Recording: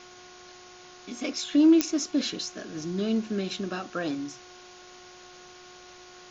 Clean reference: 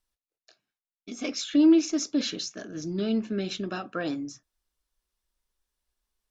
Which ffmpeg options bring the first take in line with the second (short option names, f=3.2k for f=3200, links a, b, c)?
-af "adeclick=t=4,bandreject=f=361.9:t=h:w=4,bandreject=f=723.8:t=h:w=4,bandreject=f=1.0857k:t=h:w=4,bandreject=f=1.4476k:t=h:w=4,afwtdn=0.0045"